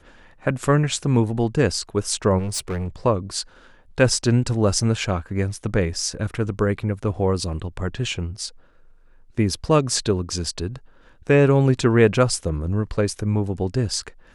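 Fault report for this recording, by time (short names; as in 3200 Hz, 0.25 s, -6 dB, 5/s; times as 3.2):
2.38–2.88 clipped -22.5 dBFS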